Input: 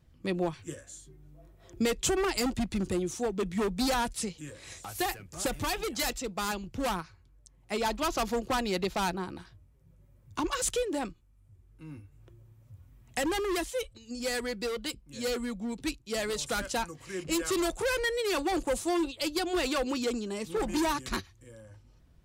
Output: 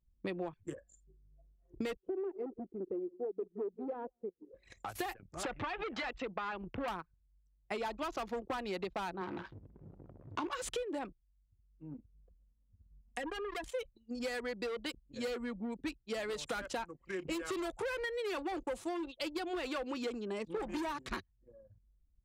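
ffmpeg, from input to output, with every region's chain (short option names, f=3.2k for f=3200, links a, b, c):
-filter_complex "[0:a]asettb=1/sr,asplit=3[a][b][c];[a]atrim=end=1.974[d];[b]atrim=start=1.97:end=4.54,asetpts=PTS-STARTPTS,afade=t=in:d=0.004:c=qsin,afade=t=out:st=2.566:d=0.004:c=qsin,bandpass=f=410:t=q:w=3.1,aecho=1:1:167:0.126,atrim=end_sample=113337[e];[c]atrim=start=4.536[f];[d][e]acrossfade=d=0.004:c1=hsin:c2=qsin[g];[g][f]acrossfade=d=0.004:c1=qsin:c2=hsin,asettb=1/sr,asplit=3[h][i][j];[h]atrim=end=5.434[k];[i]atrim=start=5.43:end=6.88,asetpts=PTS-STARTPTS,afade=t=in:d=0.004:c=qsin,afade=t=out:st=1.446:d=0.004:c=qsin,lowpass=3.5k,equalizer=f=1.6k:w=0.38:g=7.5,acompressor=threshold=-32dB:ratio=3:attack=3.2:release=140:knee=1:detection=peak[l];[j]atrim=start=6.876[m];[k][l]acrossfade=d=0.004:c1=hsin:c2=qsin[n];[n][m]acrossfade=d=0.004:c1=qsin:c2=hsin,asettb=1/sr,asplit=3[o][p][q];[o]atrim=end=9.214[r];[p]atrim=start=9.21:end=10.52,asetpts=PTS-STARTPTS,afade=t=in:d=0.004:c=qsin,afade=t=out:st=1.306:d=0.004:c=qsin,aeval=exprs='val(0)+0.5*0.0106*sgn(val(0))':c=same,highpass=100,lowpass=6.7k,asplit=2[s][t];[t]adelay=20,volume=-10dB[u];[s][u]amix=inputs=2:normalize=0,atrim=end_sample=57771[v];[q]atrim=start=10.516[w];[r][v]acrossfade=d=0.004:c1=hsin:c2=qsin[x];[x][w]acrossfade=d=0.004:c1=qsin:c2=hsin,asettb=1/sr,asplit=3[y][z][aa];[y]atrim=end=11.944[ab];[z]atrim=start=11.94:end=13.64,asetpts=PTS-STARTPTS,afade=t=in:d=0.004:c=qsin,afade=t=out:st=1.696:d=0.004:c=qsin,aecho=1:1:4.2:0.96,atrim=end_sample=74970,acompressor=threshold=-41dB:ratio=2.5:attack=3.2:release=140:knee=1:detection=peak[ac];[aa]atrim=start=13.636[ad];[ab][ac]acrossfade=d=0.004:c1=hsin:c2=qsin[ae];[ae][ad]acrossfade=d=0.004:c1=qsin:c2=hsin,anlmdn=0.251,bass=f=250:g=-7,treble=f=4k:g=-11,acompressor=threshold=-38dB:ratio=6,volume=2.5dB"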